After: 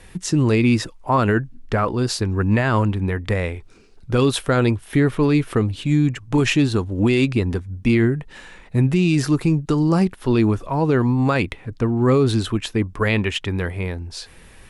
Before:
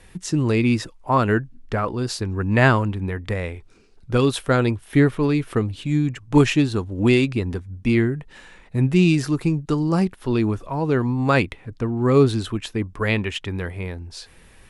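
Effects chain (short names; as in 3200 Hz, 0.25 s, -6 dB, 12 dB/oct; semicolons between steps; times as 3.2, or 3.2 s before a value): limiter -13 dBFS, peak gain reduction 11 dB; gain +4 dB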